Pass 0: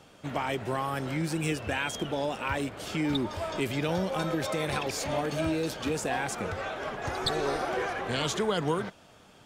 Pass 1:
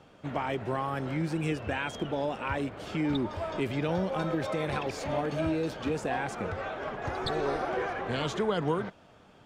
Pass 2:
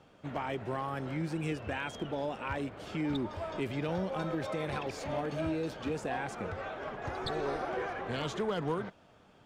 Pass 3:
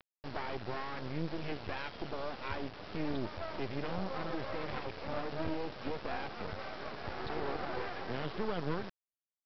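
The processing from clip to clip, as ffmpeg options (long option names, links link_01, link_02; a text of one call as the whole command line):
ffmpeg -i in.wav -af "lowpass=frequency=2100:poles=1" out.wav
ffmpeg -i in.wav -af "asoftclip=type=hard:threshold=-21.5dB,volume=-4dB" out.wav
ffmpeg -i in.wav -af "lowpass=2500,aresample=11025,acrusher=bits=5:dc=4:mix=0:aa=0.000001,aresample=44100,volume=1dB" out.wav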